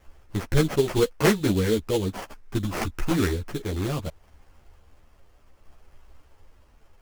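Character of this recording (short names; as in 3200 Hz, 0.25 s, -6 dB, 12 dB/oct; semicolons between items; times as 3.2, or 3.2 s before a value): a quantiser's noise floor 12-bit, dither triangular; tremolo saw down 0.71 Hz, depth 30%; aliases and images of a low sample rate 3800 Hz, jitter 20%; a shimmering, thickened sound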